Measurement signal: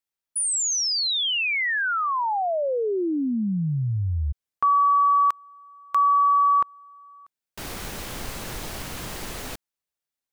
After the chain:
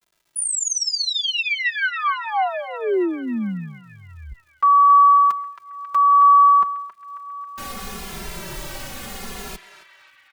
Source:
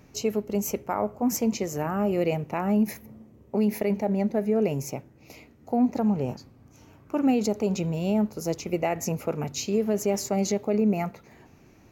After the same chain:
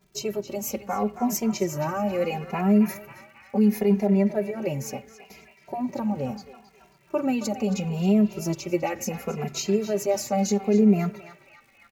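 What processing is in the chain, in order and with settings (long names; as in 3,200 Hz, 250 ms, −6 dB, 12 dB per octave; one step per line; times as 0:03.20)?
downward expander −44 dBFS, range −13 dB
comb filter 5.2 ms, depth 58%
surface crackle 260 per second −50 dBFS
on a send: feedback echo with a band-pass in the loop 271 ms, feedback 72%, band-pass 2,000 Hz, level −9 dB
on the sum: barber-pole flanger 2.5 ms −0.73 Hz
level +2.5 dB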